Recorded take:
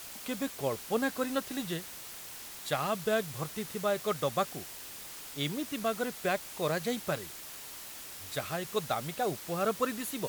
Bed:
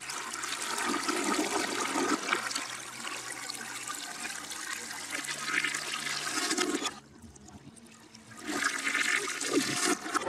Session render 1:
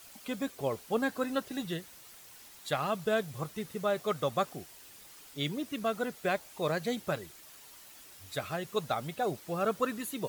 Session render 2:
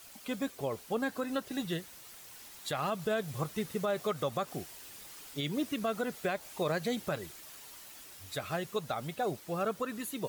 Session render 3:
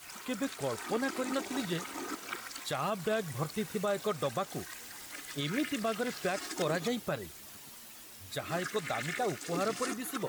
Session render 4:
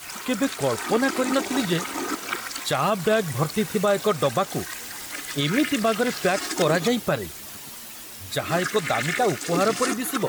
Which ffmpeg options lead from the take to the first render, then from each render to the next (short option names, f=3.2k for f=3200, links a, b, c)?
-af "afftdn=nr=9:nf=-45"
-af "dynaudnorm=f=220:g=21:m=3.5dB,alimiter=limit=-23dB:level=0:latency=1:release=119"
-filter_complex "[1:a]volume=-10.5dB[a];[0:a][a]amix=inputs=2:normalize=0"
-af "volume=11dB"